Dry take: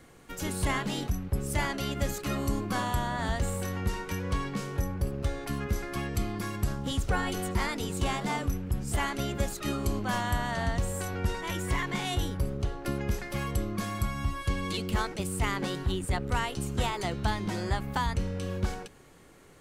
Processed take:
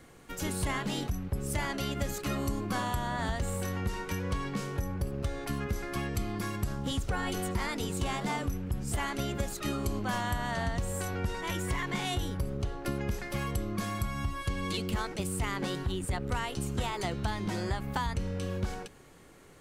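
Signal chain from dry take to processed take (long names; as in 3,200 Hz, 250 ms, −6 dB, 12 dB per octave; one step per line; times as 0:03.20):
downward compressor, threshold −27 dBFS, peak gain reduction 5.5 dB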